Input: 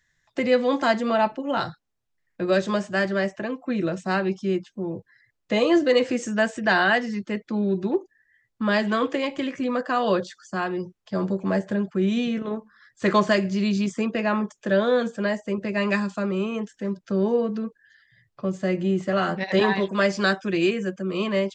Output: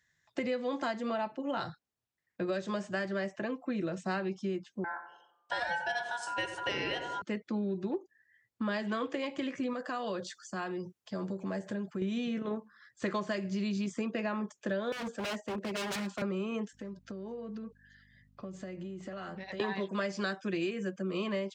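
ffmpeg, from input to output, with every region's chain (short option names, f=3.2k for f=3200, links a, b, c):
-filter_complex "[0:a]asettb=1/sr,asplit=3[a][b][c];[a]atrim=end=4.844[d];[b]atrim=start=4.84:end=7.22,asetpts=PTS-STARTPTS,afade=t=in:d=0.004:c=qsin,afade=t=out:st=2.376:d=0.004:c=qsin,asubboost=boost=8.5:cutoff=100,aeval=exprs='val(0)*sin(2*PI*1200*n/s)':c=same,asplit=2[e][f];[f]adelay=91,lowpass=f=1.7k:p=1,volume=-9dB,asplit=2[g][h];[h]adelay=91,lowpass=f=1.7k:p=1,volume=0.5,asplit=2[i][j];[j]adelay=91,lowpass=f=1.7k:p=1,volume=0.5,asplit=2[k][l];[l]adelay=91,lowpass=f=1.7k:p=1,volume=0.5,asplit=2[m][n];[n]adelay=91,lowpass=f=1.7k:p=1,volume=0.5,asplit=2[o][p];[p]adelay=91,lowpass=f=1.7k:p=1,volume=0.5[q];[e][g][i][k][m][o][q]amix=inputs=7:normalize=0,atrim=end_sample=104958[r];[c]atrim=start=7.216[s];[d][r]acrossfade=d=0.004:c1=hsin:c2=qsin[t];[t][s]acrossfade=d=0.004:c1=qsin:c2=hsin,asettb=1/sr,asplit=3[u][v][w];[u]atrim=end=9.734[x];[v]atrim=start=9.73:end=12.02,asetpts=PTS-STARTPTS,afade=t=in:d=0.004:c=qsin,afade=t=out:st=2.286:d=0.004:c=qsin,highshelf=f=6.6k:g=8,acompressor=threshold=-32dB:ratio=2:attack=3.2:release=140:knee=1:detection=peak[y];[w]atrim=start=12.016[z];[x][y]acrossfade=d=0.004:c1=hsin:c2=qsin[aa];[aa][z]acrossfade=d=0.004:c1=qsin:c2=hsin,asettb=1/sr,asplit=3[ab][ac][ad];[ab]atrim=end=14.924[ae];[ac]atrim=start=14.92:end=16.22,asetpts=PTS-STARTPTS,afade=t=in:d=0.004:c=qsin,afade=t=out:st=1.296:d=0.004:c=qsin,highpass=f=200:w=0.5412,highpass=f=200:w=1.3066,aeval=exprs='0.0531*(abs(mod(val(0)/0.0531+3,4)-2)-1)':c=same[af];[ad]atrim=start=16.216[ag];[ae][af]acrossfade=d=0.004:c1=hsin:c2=qsin[ah];[ah][ag]acrossfade=d=0.004:c1=qsin:c2=hsin,asettb=1/sr,asplit=3[ai][aj][ak];[ai]atrim=end=16.734[al];[aj]atrim=start=16.73:end=19.6,asetpts=PTS-STARTPTS,afade=t=in:d=0.004:c=qsin,afade=t=out:st=2.866:d=0.004:c=qsin,acompressor=threshold=-33dB:ratio=20:attack=3.2:release=140:knee=1:detection=peak,aeval=exprs='val(0)+0.00158*(sin(2*PI*50*n/s)+sin(2*PI*2*50*n/s)/2+sin(2*PI*3*50*n/s)/3+sin(2*PI*4*50*n/s)/4+sin(2*PI*5*50*n/s)/5)':c=same[am];[ak]atrim=start=19.596[an];[al][am]acrossfade=d=0.004:c1=hsin:c2=qsin[ao];[ao][an]acrossfade=d=0.004:c1=qsin:c2=hsin,highpass=71,acompressor=threshold=-26dB:ratio=6,volume=-4.5dB"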